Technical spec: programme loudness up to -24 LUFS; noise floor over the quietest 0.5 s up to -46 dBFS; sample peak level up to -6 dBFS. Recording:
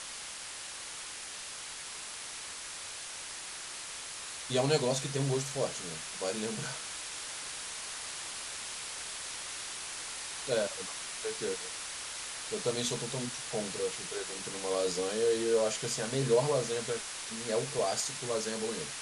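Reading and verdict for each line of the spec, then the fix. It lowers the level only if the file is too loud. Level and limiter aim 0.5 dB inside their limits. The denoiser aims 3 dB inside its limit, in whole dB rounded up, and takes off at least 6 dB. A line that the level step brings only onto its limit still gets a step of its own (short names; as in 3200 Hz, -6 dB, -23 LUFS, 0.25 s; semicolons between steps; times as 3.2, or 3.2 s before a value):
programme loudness -34.5 LUFS: OK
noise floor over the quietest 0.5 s -43 dBFS: fail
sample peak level -15.0 dBFS: OK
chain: denoiser 6 dB, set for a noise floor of -43 dBFS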